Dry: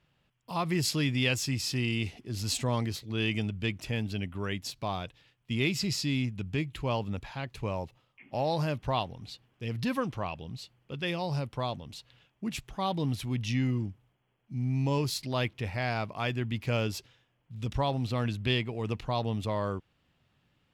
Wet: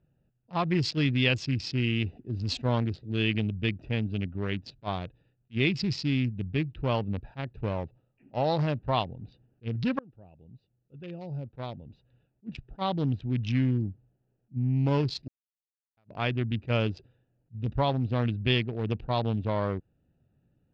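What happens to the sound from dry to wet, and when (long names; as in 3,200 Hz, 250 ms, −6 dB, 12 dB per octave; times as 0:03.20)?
0:09.99–0:13.21: fade in, from −23 dB
0:15.28–0:15.97: silence
whole clip: adaptive Wiener filter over 41 samples; low-pass filter 4,800 Hz 24 dB per octave; level that may rise only so fast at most 460 dB per second; level +3.5 dB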